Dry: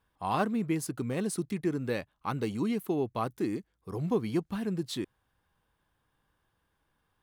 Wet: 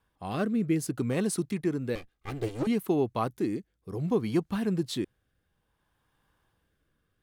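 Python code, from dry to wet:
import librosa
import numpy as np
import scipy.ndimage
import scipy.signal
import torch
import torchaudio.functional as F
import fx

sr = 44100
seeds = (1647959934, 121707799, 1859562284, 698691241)

y = fx.lower_of_two(x, sr, delay_ms=2.5, at=(1.95, 2.67))
y = fx.rotary(y, sr, hz=0.6)
y = y * 10.0 ** (4.0 / 20.0)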